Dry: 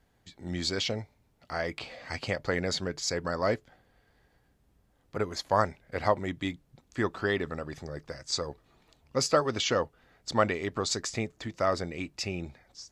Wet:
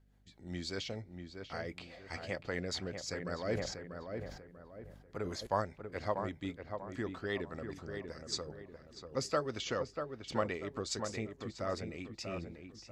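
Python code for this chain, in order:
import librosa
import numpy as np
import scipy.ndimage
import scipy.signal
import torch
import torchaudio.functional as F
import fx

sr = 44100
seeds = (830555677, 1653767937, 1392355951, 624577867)

y = fx.rotary(x, sr, hz=5.0)
y = fx.echo_filtered(y, sr, ms=641, feedback_pct=38, hz=1900.0, wet_db=-6.0)
y = fx.add_hum(y, sr, base_hz=50, snr_db=28)
y = fx.sustainer(y, sr, db_per_s=56.0, at=(3.42, 5.47))
y = y * librosa.db_to_amplitude(-6.5)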